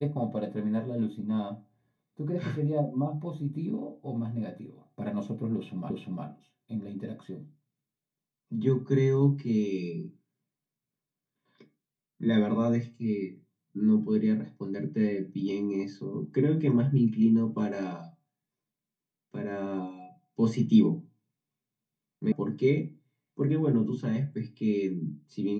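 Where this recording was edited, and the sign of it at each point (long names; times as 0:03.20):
0:05.90: the same again, the last 0.35 s
0:22.32: cut off before it has died away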